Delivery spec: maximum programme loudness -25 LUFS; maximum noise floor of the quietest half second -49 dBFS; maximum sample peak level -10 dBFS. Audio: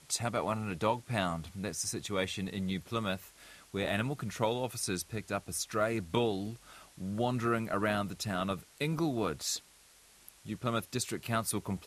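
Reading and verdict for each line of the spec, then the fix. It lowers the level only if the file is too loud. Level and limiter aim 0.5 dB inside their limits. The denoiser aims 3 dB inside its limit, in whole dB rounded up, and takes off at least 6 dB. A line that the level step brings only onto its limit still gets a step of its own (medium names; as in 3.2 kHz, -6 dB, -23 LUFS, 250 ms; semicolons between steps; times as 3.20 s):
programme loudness -34.5 LUFS: pass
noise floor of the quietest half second -61 dBFS: pass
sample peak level -15.5 dBFS: pass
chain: none needed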